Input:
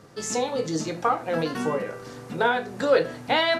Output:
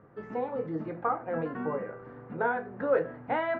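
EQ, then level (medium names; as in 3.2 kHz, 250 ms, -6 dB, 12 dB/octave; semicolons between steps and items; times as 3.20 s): low-pass 1.8 kHz 24 dB/octave; -6.0 dB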